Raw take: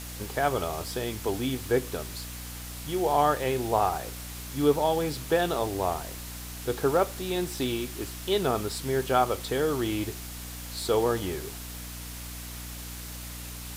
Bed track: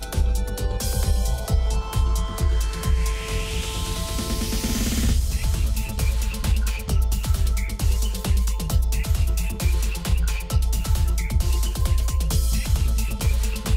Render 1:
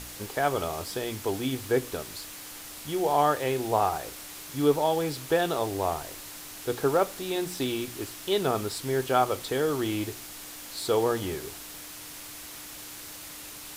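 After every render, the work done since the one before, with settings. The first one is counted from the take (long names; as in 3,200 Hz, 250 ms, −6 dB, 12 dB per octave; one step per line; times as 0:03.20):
hum removal 60 Hz, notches 4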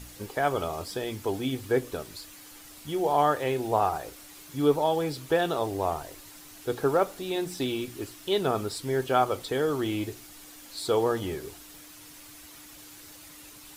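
broadband denoise 8 dB, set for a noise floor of −43 dBFS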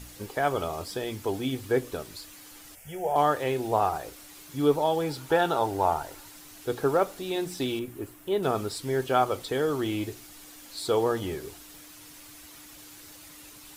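0:02.75–0:03.16: phaser with its sweep stopped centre 1,100 Hz, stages 6
0:05.09–0:06.28: hollow resonant body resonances 870/1,400 Hz, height 11 dB, ringing for 25 ms
0:07.79–0:08.43: parametric band 4,700 Hz −13.5 dB 1.8 octaves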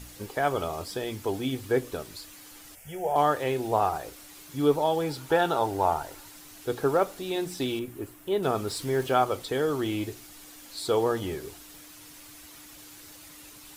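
0:08.67–0:09.14: mu-law and A-law mismatch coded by mu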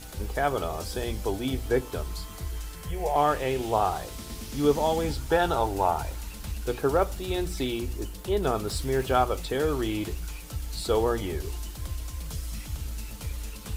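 mix in bed track −13.5 dB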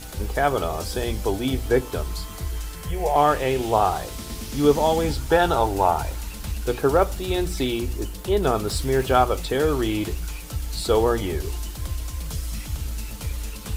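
level +5 dB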